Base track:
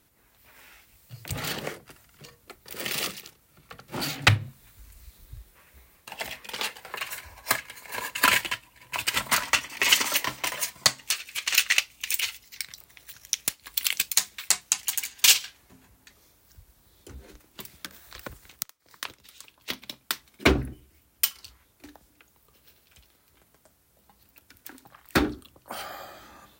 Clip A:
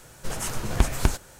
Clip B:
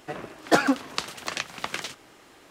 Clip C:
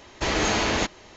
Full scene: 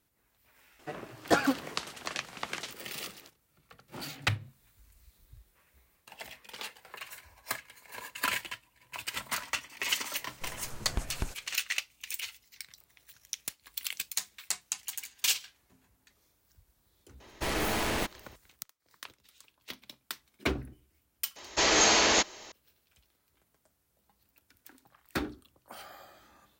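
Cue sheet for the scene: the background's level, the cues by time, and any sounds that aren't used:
base track -10.5 dB
0.79 s: add B -5.5 dB
10.17 s: add A -13 dB
17.20 s: add C -7 dB + tracing distortion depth 0.16 ms
21.36 s: add C -0.5 dB + tone controls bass -12 dB, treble +8 dB

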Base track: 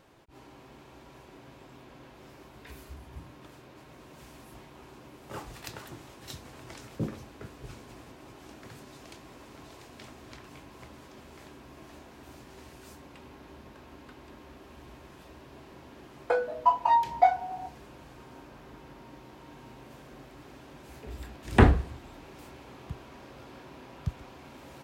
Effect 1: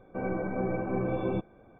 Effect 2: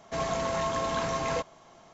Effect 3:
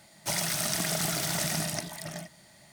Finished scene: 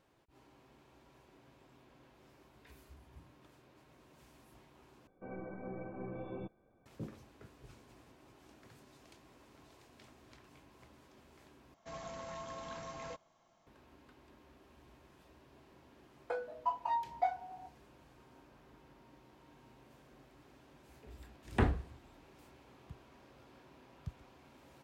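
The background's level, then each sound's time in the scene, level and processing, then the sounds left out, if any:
base track -12 dB
5.07 s: replace with 1 -14 dB
11.74 s: replace with 2 -16 dB + band-stop 410 Hz, Q 8
not used: 3

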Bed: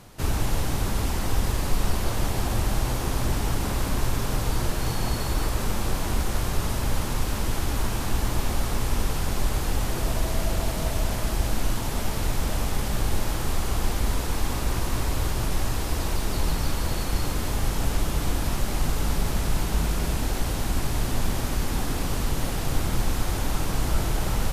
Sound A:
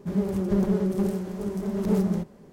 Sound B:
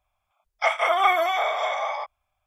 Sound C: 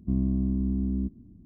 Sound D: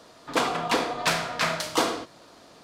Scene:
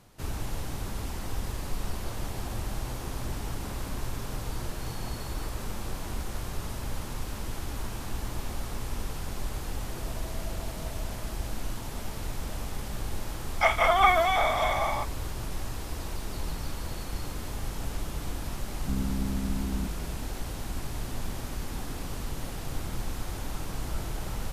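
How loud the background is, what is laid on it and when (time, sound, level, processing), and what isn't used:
bed -9 dB
12.99 s: add B -1 dB
18.80 s: add C -5.5 dB
not used: A, D

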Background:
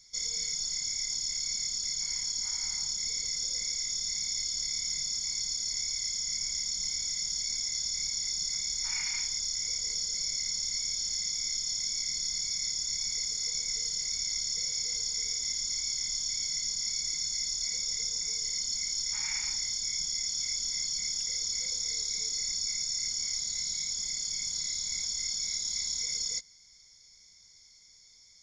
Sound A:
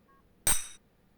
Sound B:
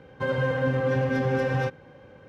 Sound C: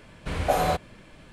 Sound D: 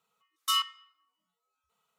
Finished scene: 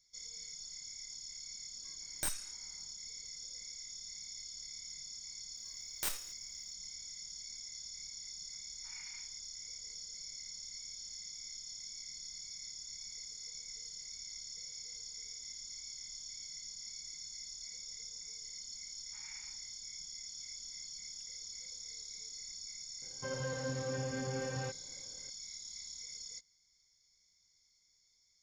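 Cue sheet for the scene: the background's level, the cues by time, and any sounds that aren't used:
background -14.5 dB
1.76 s: add A -11 dB + small resonant body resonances 310/600/1600 Hz, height 7 dB
5.56 s: add A -12 dB + formants flattened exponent 0.3
23.02 s: add B -14 dB
not used: C, D

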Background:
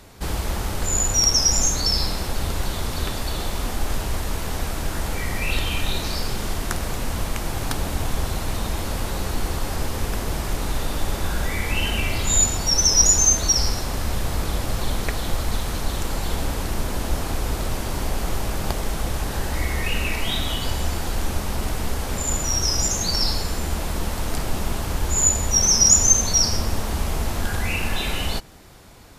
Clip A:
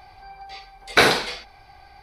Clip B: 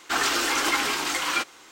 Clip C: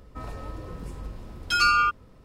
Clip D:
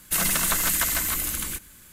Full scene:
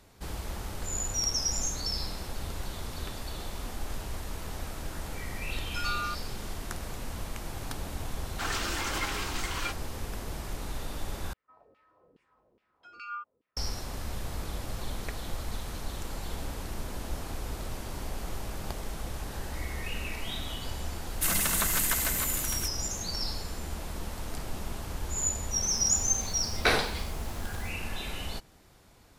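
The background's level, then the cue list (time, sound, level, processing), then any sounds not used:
background -11.5 dB
4.24 s: add C -13 dB
8.29 s: add B -9.5 dB
11.33 s: replace with C -14.5 dB + LFO band-pass saw down 2.4 Hz 350–2800 Hz
21.10 s: add D -4.5 dB
25.68 s: add A -9.5 dB + word length cut 8-bit, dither triangular

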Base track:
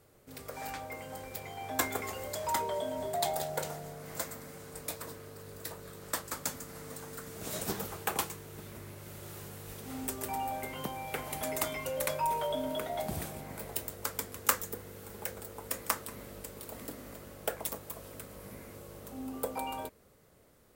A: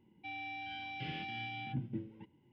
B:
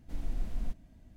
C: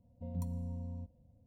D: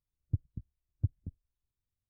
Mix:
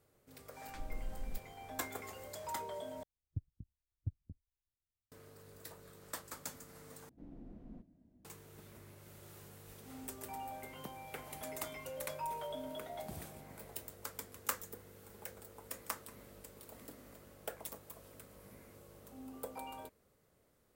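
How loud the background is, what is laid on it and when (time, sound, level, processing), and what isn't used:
base track -9.5 dB
0.66 s: add B -8.5 dB
3.03 s: replace with D -9 dB
7.09 s: replace with B -3 dB + band-pass filter 290 Hz, Q 1.1
not used: A, C

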